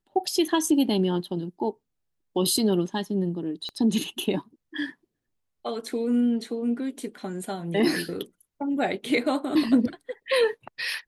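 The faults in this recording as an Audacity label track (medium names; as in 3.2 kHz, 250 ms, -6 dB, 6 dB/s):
3.690000	3.690000	pop -24 dBFS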